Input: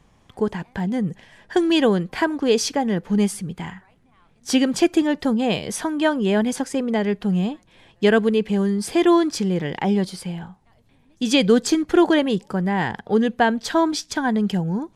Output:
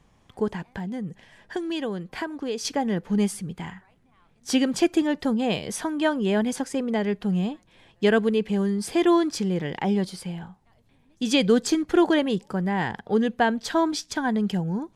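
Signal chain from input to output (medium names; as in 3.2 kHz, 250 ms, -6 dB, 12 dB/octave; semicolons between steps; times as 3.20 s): 0.60–2.65 s: compression 2:1, threshold -29 dBFS, peak gain reduction 9.5 dB; trim -3.5 dB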